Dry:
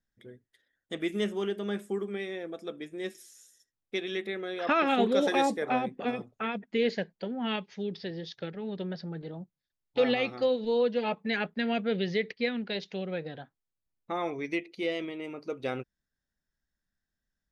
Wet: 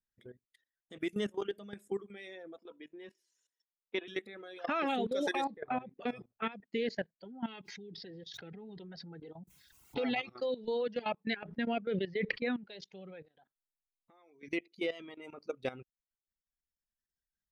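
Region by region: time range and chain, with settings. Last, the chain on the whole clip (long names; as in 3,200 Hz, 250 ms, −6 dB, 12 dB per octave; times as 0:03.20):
0:02.58–0:04.08: three-way crossover with the lows and the highs turned down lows −14 dB, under 210 Hz, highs −22 dB, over 4,000 Hz + hollow resonant body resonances 970/2,900 Hz, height 17 dB, ringing for 85 ms
0:05.44–0:05.96: Chebyshev low-pass filter 4,200 Hz, order 4 + high-shelf EQ 2,900 Hz −9.5 dB
0:07.25–0:10.27: notch comb filter 590 Hz + background raised ahead of every attack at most 56 dB per second
0:11.33–0:12.64: high-frequency loss of the air 280 metres + level that may fall only so fast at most 31 dB per second
0:13.25–0:14.43: parametric band 96 Hz −9.5 dB 1.8 octaves + downward compressor, threshold −48 dBFS
whole clip: reverb reduction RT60 1.7 s; output level in coarse steps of 16 dB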